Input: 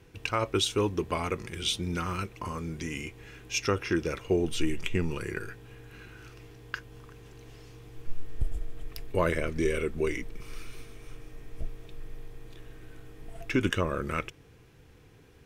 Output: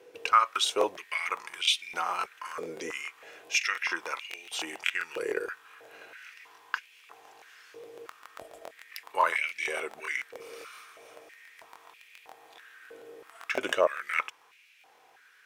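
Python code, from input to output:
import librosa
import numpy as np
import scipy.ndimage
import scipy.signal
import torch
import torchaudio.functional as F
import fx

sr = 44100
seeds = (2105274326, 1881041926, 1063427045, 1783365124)

y = fx.buffer_crackle(x, sr, first_s=0.51, period_s=0.14, block=1024, kind='repeat')
y = fx.filter_held_highpass(y, sr, hz=3.1, low_hz=490.0, high_hz=2400.0)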